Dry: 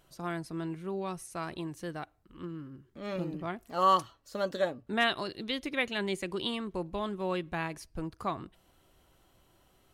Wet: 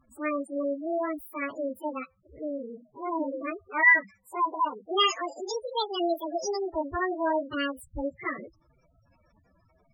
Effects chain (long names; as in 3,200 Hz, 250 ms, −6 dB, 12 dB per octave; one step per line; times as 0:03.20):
phase-vocoder pitch shift without resampling +9.5 semitones
gate on every frequency bin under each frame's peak −10 dB strong
level +8 dB